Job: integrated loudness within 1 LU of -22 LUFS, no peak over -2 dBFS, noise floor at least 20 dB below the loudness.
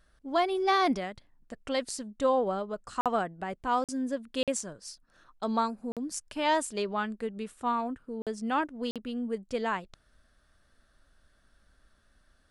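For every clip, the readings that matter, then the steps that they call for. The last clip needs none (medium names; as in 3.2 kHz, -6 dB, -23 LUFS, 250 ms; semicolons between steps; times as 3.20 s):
dropouts 6; longest dropout 47 ms; loudness -31.5 LUFS; peak level -14.5 dBFS; loudness target -22.0 LUFS
-> interpolate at 3.01/3.84/4.43/5.92/8.22/8.91 s, 47 ms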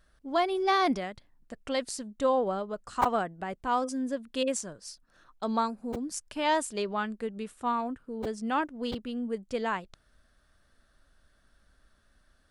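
dropouts 0; loudness -31.0 LUFS; peak level -12.0 dBFS; loudness target -22.0 LUFS
-> trim +9 dB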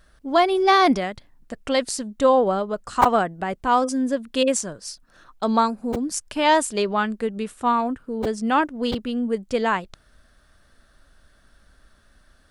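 loudness -22.0 LUFS; peak level -3.0 dBFS; noise floor -58 dBFS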